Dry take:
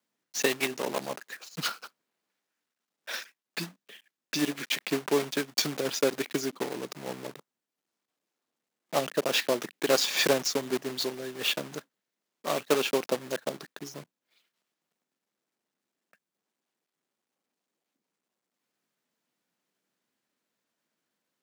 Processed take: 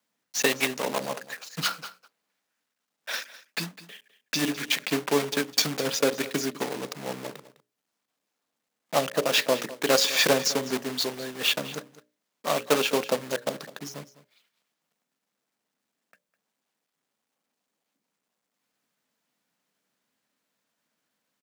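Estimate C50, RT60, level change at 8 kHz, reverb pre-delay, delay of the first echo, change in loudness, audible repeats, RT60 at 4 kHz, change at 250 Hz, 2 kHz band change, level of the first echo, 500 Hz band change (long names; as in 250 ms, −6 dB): no reverb audible, no reverb audible, +4.0 dB, no reverb audible, 205 ms, +3.0 dB, 1, no reverb audible, +2.0 dB, +4.0 dB, −17.0 dB, +2.0 dB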